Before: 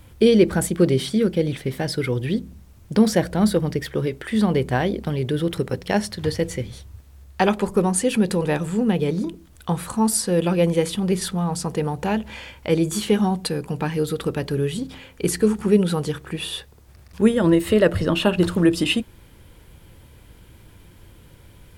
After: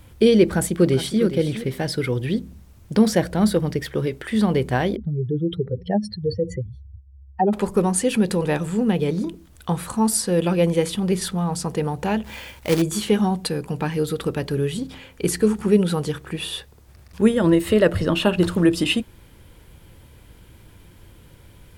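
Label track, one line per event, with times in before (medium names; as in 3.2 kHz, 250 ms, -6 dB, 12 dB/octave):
0.430000	1.220000	echo throw 410 ms, feedback 15%, level -11.5 dB
4.960000	7.530000	spectral contrast enhancement exponent 2.7
12.240000	12.820000	companded quantiser 4-bit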